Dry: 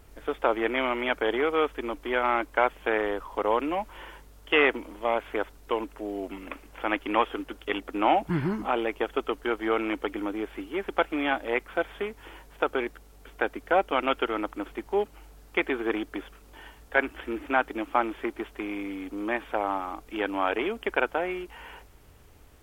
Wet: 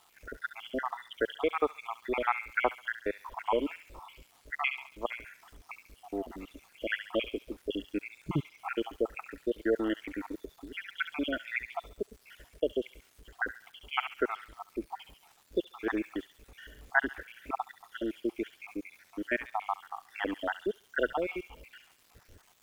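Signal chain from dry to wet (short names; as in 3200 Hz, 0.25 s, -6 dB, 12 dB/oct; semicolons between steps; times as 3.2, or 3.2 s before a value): random spectral dropouts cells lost 77%; thin delay 69 ms, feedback 41%, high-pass 2300 Hz, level -6 dB; crackle 540/s -51 dBFS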